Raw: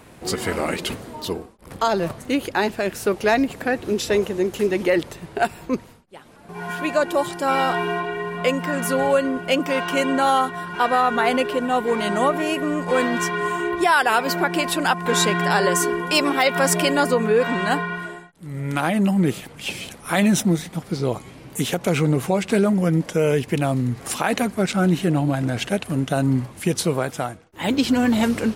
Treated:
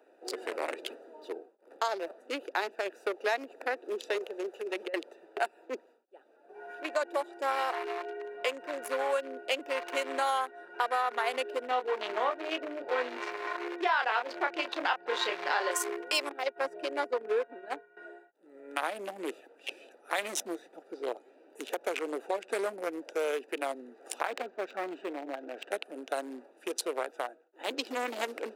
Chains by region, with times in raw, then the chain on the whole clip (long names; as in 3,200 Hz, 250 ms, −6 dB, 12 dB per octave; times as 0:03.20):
0:04.18–0:04.94: parametric band 270 Hz −11 dB 0.64 octaves + compressor whose output falls as the input rises −22 dBFS, ratio −0.5
0:11.68–0:15.71: low-pass filter 4,400 Hz 24 dB per octave + double-tracking delay 28 ms −4.5 dB + single-tap delay 732 ms −24 dB
0:16.29–0:17.97: spectral tilt −2.5 dB per octave + downward expander −12 dBFS + one half of a high-frequency compander encoder only
0:24.25–0:25.71: tube saturation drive 13 dB, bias 0.3 + linearly interpolated sample-rate reduction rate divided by 4×
whole clip: adaptive Wiener filter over 41 samples; Bessel high-pass filter 620 Hz, order 8; downward compressor 2.5 to 1, threshold −27 dBFS; level −1.5 dB